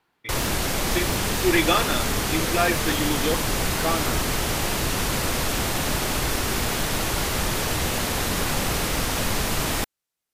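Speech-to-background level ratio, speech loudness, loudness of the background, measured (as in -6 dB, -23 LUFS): -2.0 dB, -26.0 LUFS, -24.0 LUFS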